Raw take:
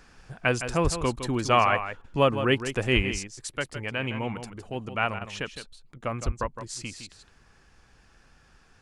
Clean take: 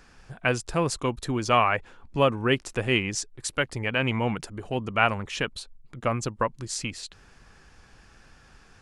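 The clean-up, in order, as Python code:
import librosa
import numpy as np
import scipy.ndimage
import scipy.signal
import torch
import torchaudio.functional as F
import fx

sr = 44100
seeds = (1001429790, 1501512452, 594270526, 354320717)

y = fx.highpass(x, sr, hz=140.0, slope=24, at=(0.83, 0.95), fade=0.02)
y = fx.highpass(y, sr, hz=140.0, slope=24, at=(2.95, 3.07), fade=0.02)
y = fx.highpass(y, sr, hz=140.0, slope=24, at=(6.25, 6.37), fade=0.02)
y = fx.fix_interpolate(y, sr, at_s=(2.02, 5.19, 5.98), length_ms=20.0)
y = fx.fix_echo_inverse(y, sr, delay_ms=162, level_db=-10.0)
y = fx.gain(y, sr, db=fx.steps((0.0, 0.0), (3.11, 5.0)))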